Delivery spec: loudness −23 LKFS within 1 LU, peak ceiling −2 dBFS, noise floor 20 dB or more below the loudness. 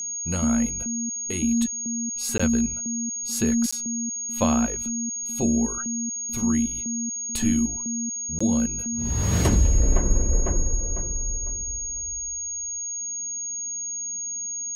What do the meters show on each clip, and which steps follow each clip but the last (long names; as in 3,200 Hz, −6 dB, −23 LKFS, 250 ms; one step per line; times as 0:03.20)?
number of dropouts 3; longest dropout 15 ms; interfering tone 6,600 Hz; level of the tone −28 dBFS; integrated loudness −24.5 LKFS; sample peak −8.0 dBFS; target loudness −23.0 LKFS
→ repair the gap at 0:02.38/0:03.71/0:08.39, 15 ms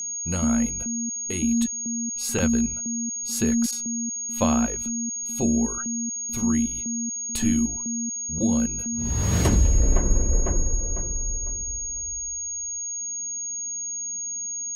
number of dropouts 0; interfering tone 6,600 Hz; level of the tone −28 dBFS
→ notch filter 6,600 Hz, Q 30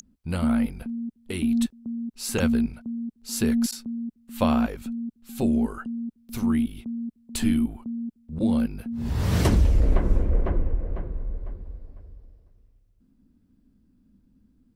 interfering tone none found; integrated loudness −26.5 LKFS; sample peak −9.0 dBFS; target loudness −23.0 LKFS
→ level +3.5 dB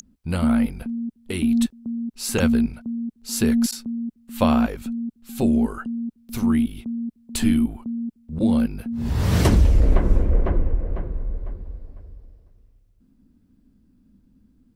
integrated loudness −23.0 LKFS; sample peak −5.5 dBFS; background noise floor −61 dBFS